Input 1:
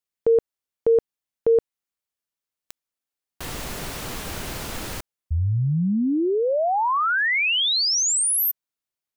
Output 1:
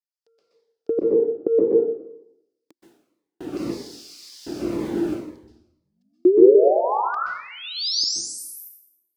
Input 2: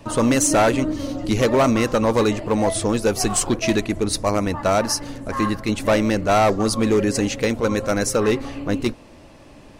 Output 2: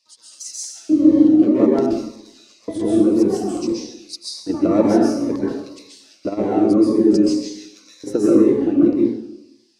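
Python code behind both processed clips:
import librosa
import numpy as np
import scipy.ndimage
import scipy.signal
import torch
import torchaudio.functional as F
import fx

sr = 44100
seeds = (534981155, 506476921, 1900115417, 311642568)

y = fx.tilt_eq(x, sr, slope=-4.5)
y = fx.over_compress(y, sr, threshold_db=-12.0, ratio=-0.5)
y = fx.filter_lfo_highpass(y, sr, shape='square', hz=0.56, low_hz=320.0, high_hz=4900.0, q=4.4)
y = fx.rev_plate(y, sr, seeds[0], rt60_s=0.84, hf_ratio=0.9, predelay_ms=115, drr_db=-5.5)
y = fx.notch_cascade(y, sr, direction='falling', hz=1.9)
y = F.gain(torch.from_numpy(y), -8.0).numpy()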